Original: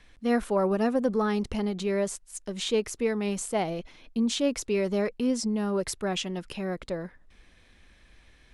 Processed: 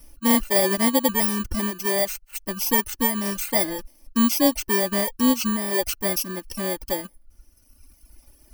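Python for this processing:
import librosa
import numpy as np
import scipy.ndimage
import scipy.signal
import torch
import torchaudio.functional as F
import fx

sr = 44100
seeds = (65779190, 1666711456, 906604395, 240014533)

p1 = fx.bit_reversed(x, sr, seeds[0], block=32)
p2 = fx.dereverb_blind(p1, sr, rt60_s=1.7)
p3 = 10.0 ** (-22.5 / 20.0) * np.tanh(p2 / 10.0 ** (-22.5 / 20.0))
p4 = p2 + (p3 * 10.0 ** (-8.0 / 20.0))
p5 = p4 + 0.65 * np.pad(p4, (int(3.4 * sr / 1000.0), 0))[:len(p4)]
y = p5 * 10.0 ** (3.0 / 20.0)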